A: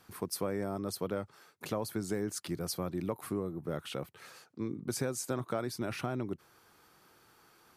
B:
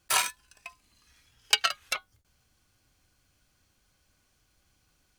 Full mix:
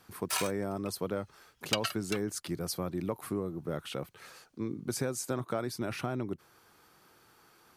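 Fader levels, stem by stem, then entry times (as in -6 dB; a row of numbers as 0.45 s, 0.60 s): +1.0 dB, -8.5 dB; 0.00 s, 0.20 s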